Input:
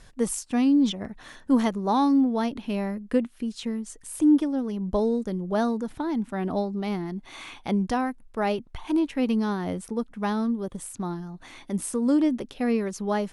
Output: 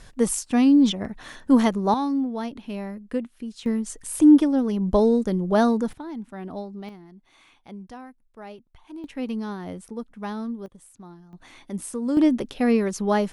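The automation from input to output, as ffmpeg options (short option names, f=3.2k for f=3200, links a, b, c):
-af "asetnsamples=n=441:p=0,asendcmd='1.94 volume volume -4dB;3.66 volume volume 5.5dB;5.93 volume volume -7dB;6.89 volume volume -15dB;9.04 volume volume -5dB;10.66 volume volume -13dB;11.33 volume volume -3dB;12.17 volume volume 4.5dB',volume=4dB"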